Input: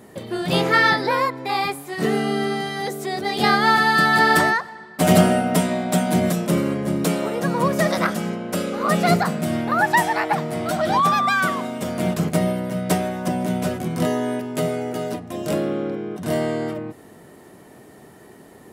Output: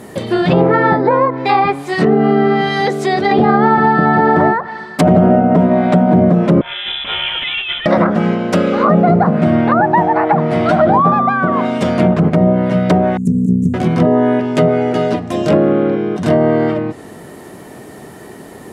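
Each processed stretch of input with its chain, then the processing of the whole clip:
3.31–3.86 de-hum 81.47 Hz, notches 29 + fast leveller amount 50%
6.61–7.86 HPF 1400 Hz 6 dB/oct + negative-ratio compressor -31 dBFS + inverted band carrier 3700 Hz
13.17–13.74 brick-wall FIR band-stop 290–6600 Hz + Doppler distortion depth 0.23 ms
whole clip: treble ducked by the level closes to 860 Hz, closed at -16.5 dBFS; maximiser +12.5 dB; gain -1 dB

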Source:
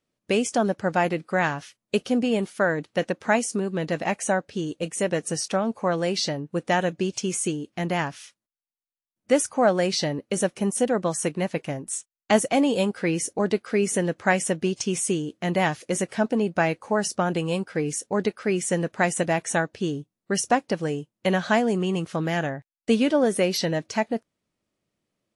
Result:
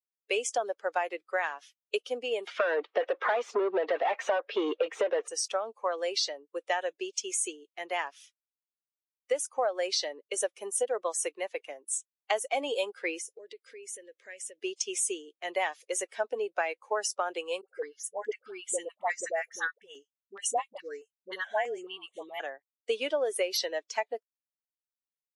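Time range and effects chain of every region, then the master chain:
2.47–5.28 overdrive pedal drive 33 dB, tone 1000 Hz, clips at -7 dBFS + LPF 4700 Hz
13.18–14.58 band shelf 1000 Hz -12.5 dB 1.2 oct + compressor 12:1, threshold -30 dBFS
17.61–22.4 notch 2500 Hz, Q 13 + dispersion highs, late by 72 ms, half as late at 740 Hz + step phaser 4.7 Hz 980–5000 Hz
whole clip: per-bin expansion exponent 1.5; steep high-pass 400 Hz 36 dB/oct; compressor 12:1, threshold -26 dBFS; gain +1.5 dB

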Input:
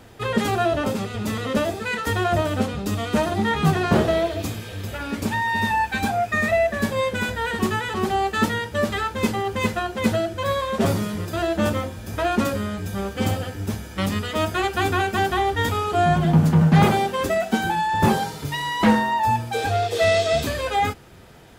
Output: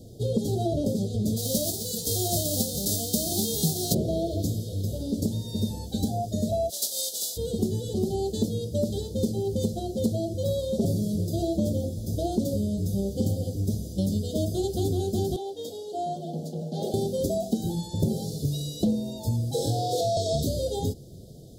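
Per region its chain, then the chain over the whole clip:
1.36–3.93 spectral whitening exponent 0.3 + doubler 17 ms -11 dB
6.69–7.36 spectral contrast lowered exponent 0.52 + HPF 1200 Hz
15.36–16.94 HPF 640 Hz + high shelf 4300 Hz -12 dB
19.51–20.17 flutter echo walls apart 3.9 m, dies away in 0.73 s + compressor 4:1, threshold -16 dBFS + frequency shift +18 Hz
whole clip: inverse Chebyshev band-stop 940–2600 Hz, stop band 40 dB; bell 140 Hz +6 dB 1 oct; compressor 5:1, threshold -22 dBFS

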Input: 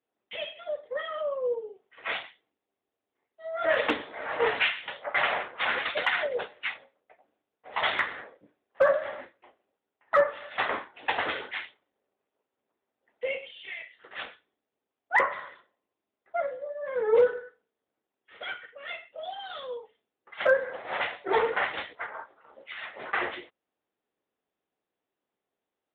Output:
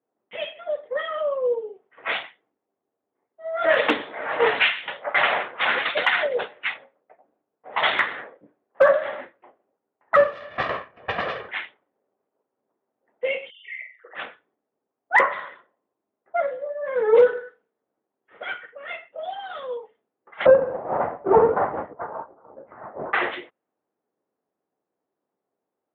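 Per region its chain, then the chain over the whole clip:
10.16–11.49 minimum comb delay 1.7 ms + Bessel low-pass 2100 Hz
13.5–14.15 formant sharpening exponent 3 + HPF 360 Hz + flutter echo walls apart 7.5 m, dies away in 0.38 s
20.46–23.13 half-waves squared off + LPF 1100 Hz 24 dB/oct + low shelf 99 Hz +6.5 dB
whole clip: HPF 120 Hz 12 dB/oct; low-pass opened by the level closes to 1100 Hz, open at -23.5 dBFS; gain +6 dB

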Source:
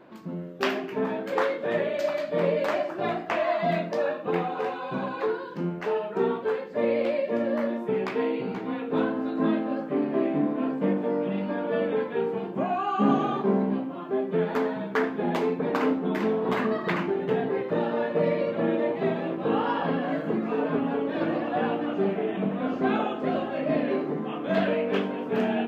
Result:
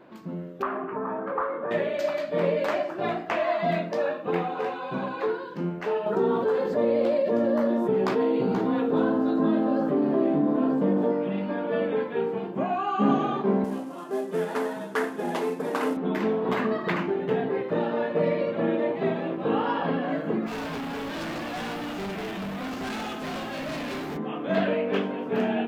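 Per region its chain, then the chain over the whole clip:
0.62–1.71 overloaded stage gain 18 dB + compressor 5:1, threshold -29 dBFS + synth low-pass 1200 Hz, resonance Q 4.5
6.06–11.12 bell 2300 Hz -10.5 dB 0.84 oct + fast leveller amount 70%
13.64–15.97 CVSD 64 kbps + HPF 300 Hz 6 dB/oct + notch 2300 Hz, Q 16
20.46–24.16 spectral whitening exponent 0.6 + overloaded stage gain 30.5 dB
whole clip: dry

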